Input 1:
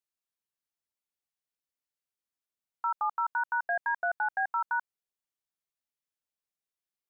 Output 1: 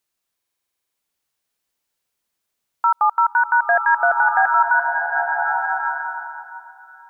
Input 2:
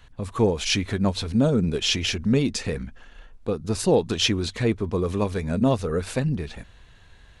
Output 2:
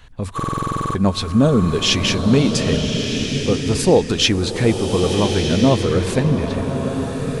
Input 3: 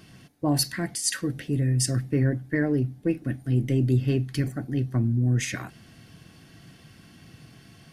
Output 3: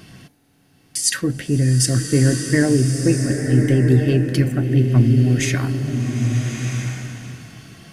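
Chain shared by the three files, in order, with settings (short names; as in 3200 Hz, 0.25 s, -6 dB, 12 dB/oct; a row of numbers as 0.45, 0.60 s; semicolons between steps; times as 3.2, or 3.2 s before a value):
stuck buffer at 0.35/6.71, samples 2048, times 12; bloom reverb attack 1.31 s, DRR 4 dB; match loudness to -18 LUFS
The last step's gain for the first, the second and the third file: +13.5, +5.5, +7.5 dB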